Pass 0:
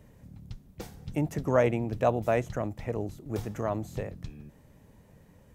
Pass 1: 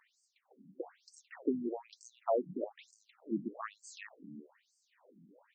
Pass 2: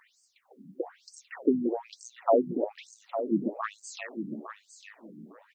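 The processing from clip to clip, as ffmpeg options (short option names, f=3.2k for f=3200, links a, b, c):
-filter_complex "[0:a]acrossover=split=130|3000[a][b][c];[b]acompressor=threshold=-27dB:ratio=6[d];[a][d][c]amix=inputs=3:normalize=0,afftfilt=real='re*between(b*sr/1024,230*pow(6400/230,0.5+0.5*sin(2*PI*1.1*pts/sr))/1.41,230*pow(6400/230,0.5+0.5*sin(2*PI*1.1*pts/sr))*1.41)':imag='im*between(b*sr/1024,230*pow(6400/230,0.5+0.5*sin(2*PI*1.1*pts/sr))/1.41,230*pow(6400/230,0.5+0.5*sin(2*PI*1.1*pts/sr))*1.41)':win_size=1024:overlap=0.75,volume=3dB"
-af "aecho=1:1:856|1712:0.335|0.0569,volume=8.5dB"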